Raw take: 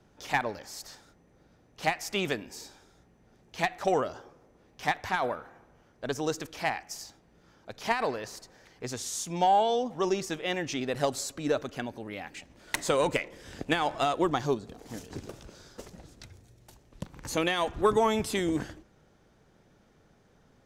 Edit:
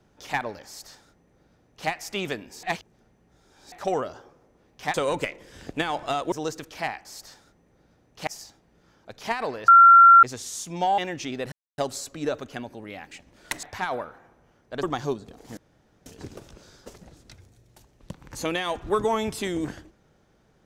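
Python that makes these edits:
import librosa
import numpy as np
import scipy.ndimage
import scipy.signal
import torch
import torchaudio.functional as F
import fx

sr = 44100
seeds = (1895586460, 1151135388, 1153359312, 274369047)

y = fx.edit(x, sr, fx.duplicate(start_s=0.66, length_s=1.22, to_s=6.87),
    fx.reverse_span(start_s=2.63, length_s=1.09),
    fx.swap(start_s=4.94, length_s=1.2, other_s=12.86, other_length_s=1.38),
    fx.bleep(start_s=8.28, length_s=0.55, hz=1370.0, db=-8.0),
    fx.cut(start_s=9.58, length_s=0.89),
    fx.insert_silence(at_s=11.01, length_s=0.26),
    fx.insert_room_tone(at_s=14.98, length_s=0.49), tone=tone)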